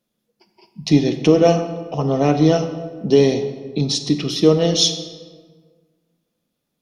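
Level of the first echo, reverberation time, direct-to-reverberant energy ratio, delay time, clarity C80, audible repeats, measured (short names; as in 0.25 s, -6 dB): none, 1.5 s, 8.5 dB, none, 11.0 dB, none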